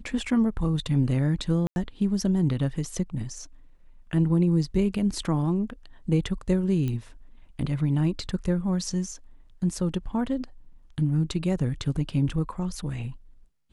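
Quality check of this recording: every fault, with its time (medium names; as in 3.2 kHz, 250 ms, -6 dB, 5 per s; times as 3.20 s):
1.67–1.76 s: dropout 91 ms
6.88 s: pop -19 dBFS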